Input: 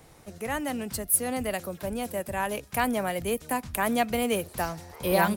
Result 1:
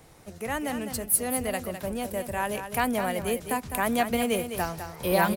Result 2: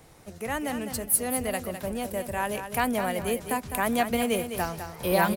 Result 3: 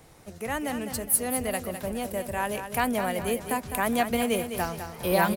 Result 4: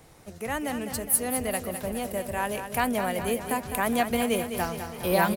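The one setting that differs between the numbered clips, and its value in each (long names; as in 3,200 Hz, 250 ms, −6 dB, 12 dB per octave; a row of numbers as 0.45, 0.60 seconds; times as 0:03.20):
repeating echo, feedback: 15, 27, 41, 61%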